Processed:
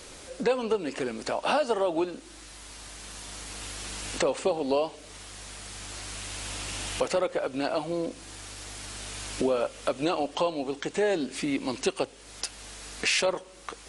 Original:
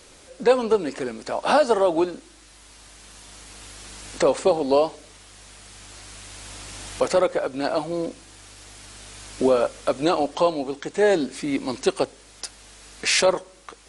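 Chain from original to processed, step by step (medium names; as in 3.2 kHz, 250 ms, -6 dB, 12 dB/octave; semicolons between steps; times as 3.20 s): dynamic bell 2.8 kHz, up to +6 dB, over -50 dBFS, Q 3.1; compression 2:1, threshold -35 dBFS, peak gain reduction 12.5 dB; trim +3.5 dB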